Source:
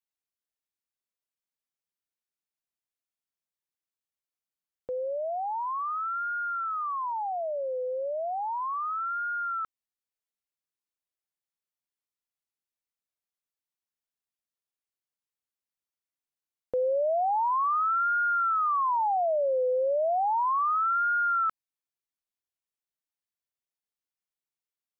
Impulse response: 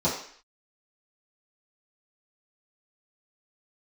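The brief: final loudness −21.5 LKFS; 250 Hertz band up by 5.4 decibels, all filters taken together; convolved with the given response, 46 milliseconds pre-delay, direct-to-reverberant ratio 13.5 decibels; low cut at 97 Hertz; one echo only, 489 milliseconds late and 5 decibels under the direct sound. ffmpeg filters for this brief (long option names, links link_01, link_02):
-filter_complex "[0:a]highpass=97,equalizer=frequency=250:width_type=o:gain=7.5,aecho=1:1:489:0.562,asplit=2[link_01][link_02];[1:a]atrim=start_sample=2205,adelay=46[link_03];[link_02][link_03]afir=irnorm=-1:irlink=0,volume=-26dB[link_04];[link_01][link_04]amix=inputs=2:normalize=0,volume=4.5dB"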